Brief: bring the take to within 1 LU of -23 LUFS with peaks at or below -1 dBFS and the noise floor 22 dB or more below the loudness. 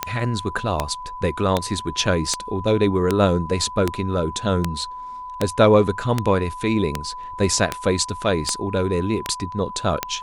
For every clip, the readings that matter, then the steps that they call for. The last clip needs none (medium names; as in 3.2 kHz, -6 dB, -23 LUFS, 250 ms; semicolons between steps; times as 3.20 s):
clicks found 14; steady tone 1 kHz; tone level -31 dBFS; loudness -22.0 LUFS; peak level -3.0 dBFS; loudness target -23.0 LUFS
-> de-click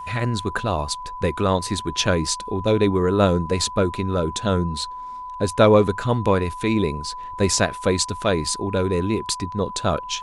clicks found 0; steady tone 1 kHz; tone level -31 dBFS
-> band-stop 1 kHz, Q 30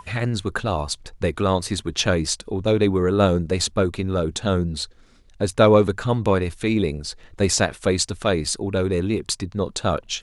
steady tone not found; loudness -22.0 LUFS; peak level -3.5 dBFS; loudness target -23.0 LUFS
-> trim -1 dB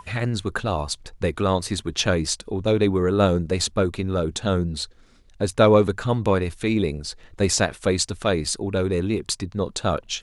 loudness -23.0 LUFS; peak level -4.5 dBFS; noise floor -52 dBFS